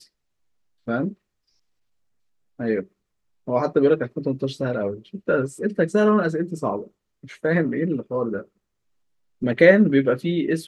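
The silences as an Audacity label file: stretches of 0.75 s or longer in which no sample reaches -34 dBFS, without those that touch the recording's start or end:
1.120000	2.600000	silence
8.420000	9.420000	silence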